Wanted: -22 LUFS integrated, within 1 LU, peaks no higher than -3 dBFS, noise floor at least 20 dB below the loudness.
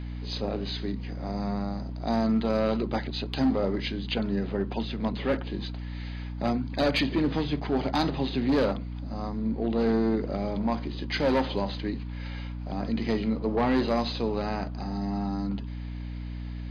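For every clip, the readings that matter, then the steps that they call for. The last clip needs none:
hum 60 Hz; highest harmonic 300 Hz; hum level -33 dBFS; loudness -29.0 LUFS; peak level -16.5 dBFS; loudness target -22.0 LUFS
-> de-hum 60 Hz, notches 5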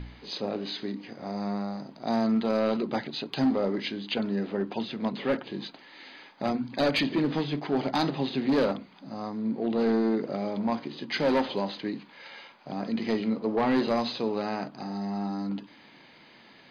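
hum not found; loudness -29.5 LUFS; peak level -16.5 dBFS; loudness target -22.0 LUFS
-> trim +7.5 dB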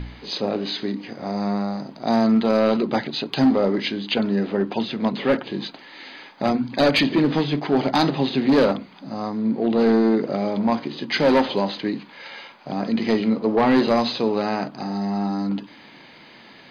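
loudness -22.0 LUFS; peak level -9.0 dBFS; noise floor -47 dBFS

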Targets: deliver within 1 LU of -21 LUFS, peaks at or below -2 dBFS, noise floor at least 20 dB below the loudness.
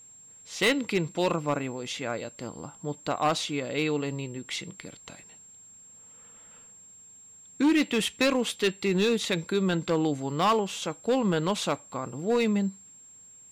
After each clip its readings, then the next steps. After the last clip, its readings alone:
clipped samples 1.1%; clipping level -18.0 dBFS; steady tone 7.5 kHz; tone level -49 dBFS; loudness -28.0 LUFS; peak level -18.0 dBFS; loudness target -21.0 LUFS
-> clip repair -18 dBFS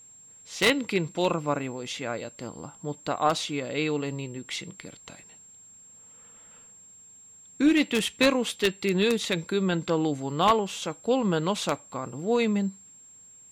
clipped samples 0.0%; steady tone 7.5 kHz; tone level -49 dBFS
-> band-stop 7.5 kHz, Q 30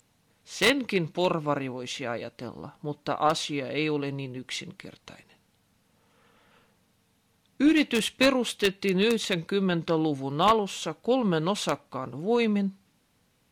steady tone not found; loudness -27.0 LUFS; peak level -9.0 dBFS; loudness target -21.0 LUFS
-> trim +6 dB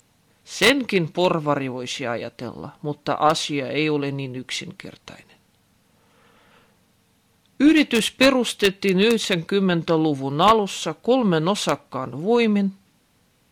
loudness -21.0 LUFS; peak level -3.0 dBFS; noise floor -62 dBFS

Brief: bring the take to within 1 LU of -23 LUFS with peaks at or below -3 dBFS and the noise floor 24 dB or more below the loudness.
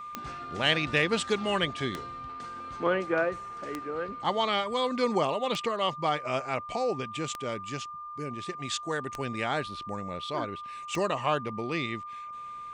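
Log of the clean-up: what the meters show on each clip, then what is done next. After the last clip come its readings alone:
clicks found 7; steady tone 1.2 kHz; tone level -38 dBFS; loudness -30.5 LUFS; peak level -12.0 dBFS; loudness target -23.0 LUFS
-> de-click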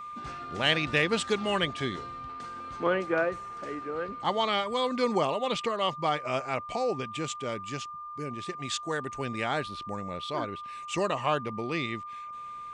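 clicks found 0; steady tone 1.2 kHz; tone level -38 dBFS
-> band-stop 1.2 kHz, Q 30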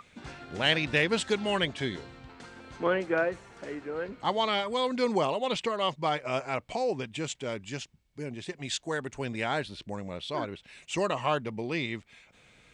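steady tone not found; loudness -30.5 LUFS; peak level -12.5 dBFS; loudness target -23.0 LUFS
-> trim +7.5 dB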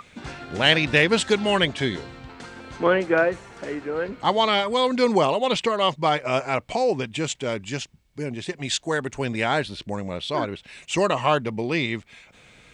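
loudness -23.0 LUFS; peak level -5.0 dBFS; noise floor -55 dBFS

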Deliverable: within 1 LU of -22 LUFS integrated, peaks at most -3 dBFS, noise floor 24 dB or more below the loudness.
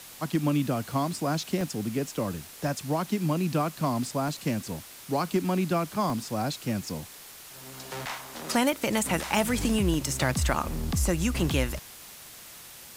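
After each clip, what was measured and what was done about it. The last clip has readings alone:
dropouts 7; longest dropout 1.1 ms; noise floor -47 dBFS; noise floor target -53 dBFS; loudness -28.5 LUFS; peak level -10.0 dBFS; loudness target -22.0 LUFS
-> interpolate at 1.61/4.28/6.10/8.06/8.73/9.94/11.39 s, 1.1 ms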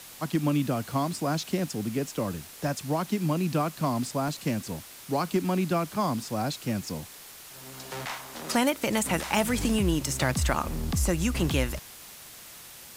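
dropouts 0; noise floor -47 dBFS; noise floor target -53 dBFS
-> noise print and reduce 6 dB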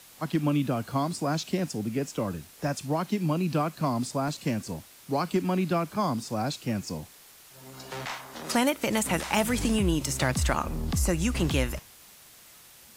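noise floor -53 dBFS; loudness -28.5 LUFS; peak level -10.0 dBFS; loudness target -22.0 LUFS
-> trim +6.5 dB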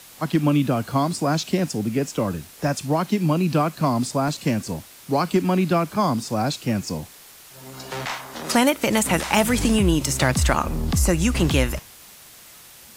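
loudness -22.0 LUFS; peak level -3.5 dBFS; noise floor -46 dBFS

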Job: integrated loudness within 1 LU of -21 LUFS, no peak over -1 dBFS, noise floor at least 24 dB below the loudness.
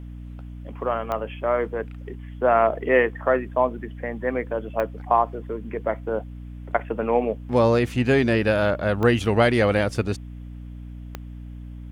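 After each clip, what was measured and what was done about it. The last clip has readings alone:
clicks found 4; hum 60 Hz; highest harmonic 300 Hz; hum level -34 dBFS; loudness -23.0 LUFS; peak level -5.5 dBFS; loudness target -21.0 LUFS
-> de-click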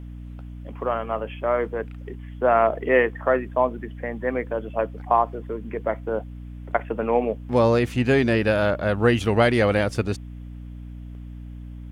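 clicks found 0; hum 60 Hz; highest harmonic 300 Hz; hum level -34 dBFS
-> de-hum 60 Hz, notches 5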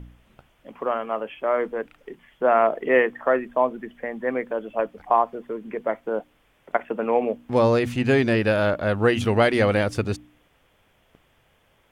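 hum not found; loudness -23.5 LUFS; peak level -5.0 dBFS; loudness target -21.0 LUFS
-> trim +2.5 dB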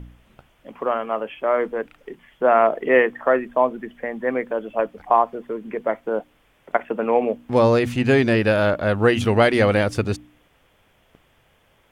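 loudness -21.0 LUFS; peak level -2.5 dBFS; noise floor -60 dBFS

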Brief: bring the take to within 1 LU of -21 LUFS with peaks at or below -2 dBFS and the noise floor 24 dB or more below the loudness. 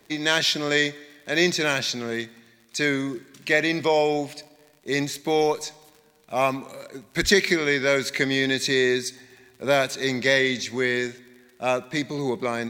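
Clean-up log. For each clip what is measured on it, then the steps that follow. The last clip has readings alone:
tick rate 47 per s; loudness -23.5 LUFS; peak level -3.5 dBFS; loudness target -21.0 LUFS
-> de-click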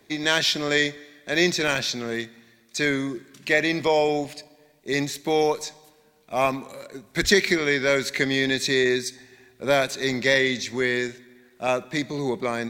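tick rate 0.31 per s; loudness -23.5 LUFS; peak level -3.5 dBFS; loudness target -21.0 LUFS
-> trim +2.5 dB; peak limiter -2 dBFS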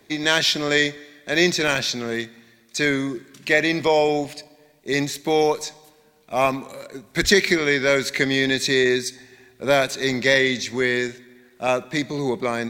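loudness -21.0 LUFS; peak level -2.0 dBFS; noise floor -56 dBFS

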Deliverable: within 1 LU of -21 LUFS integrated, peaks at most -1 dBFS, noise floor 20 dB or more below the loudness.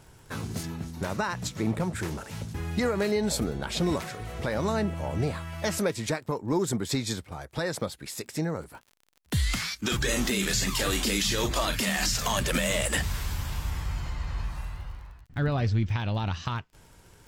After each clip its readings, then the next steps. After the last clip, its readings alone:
tick rate 30 per s; loudness -29.0 LUFS; peak level -12.5 dBFS; loudness target -21.0 LUFS
-> de-click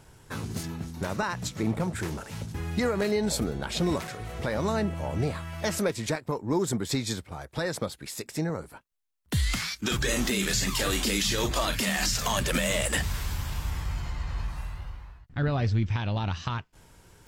tick rate 0.17 per s; loudness -29.0 LUFS; peak level -12.5 dBFS; loudness target -21.0 LUFS
-> trim +8 dB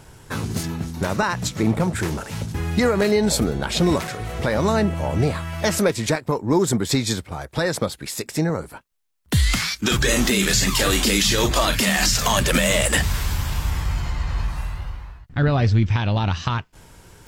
loudness -21.0 LUFS; peak level -4.5 dBFS; noise floor -50 dBFS

